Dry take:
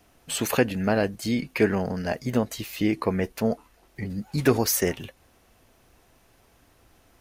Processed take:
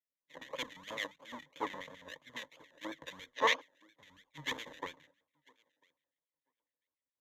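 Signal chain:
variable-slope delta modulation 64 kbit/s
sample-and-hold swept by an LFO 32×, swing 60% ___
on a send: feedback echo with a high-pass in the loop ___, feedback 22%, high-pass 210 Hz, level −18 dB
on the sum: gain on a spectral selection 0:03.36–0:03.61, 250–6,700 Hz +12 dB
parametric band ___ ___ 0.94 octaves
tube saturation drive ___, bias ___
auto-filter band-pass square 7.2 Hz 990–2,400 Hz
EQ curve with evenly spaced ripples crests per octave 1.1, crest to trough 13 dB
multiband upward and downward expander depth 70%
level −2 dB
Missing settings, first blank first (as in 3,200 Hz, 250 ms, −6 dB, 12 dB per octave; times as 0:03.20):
3 Hz, 996 ms, 1,000 Hz, −12.5 dB, 17 dB, 0.6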